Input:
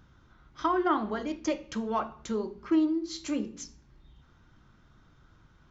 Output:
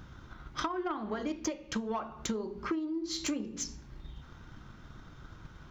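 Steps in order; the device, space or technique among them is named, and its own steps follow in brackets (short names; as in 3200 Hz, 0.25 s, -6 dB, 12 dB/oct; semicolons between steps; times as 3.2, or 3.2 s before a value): drum-bus smash (transient shaper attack +7 dB, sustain +1 dB; compressor 10:1, threshold -38 dBFS, peak gain reduction 22.5 dB; soft clip -31 dBFS, distortion -19 dB); gain +8 dB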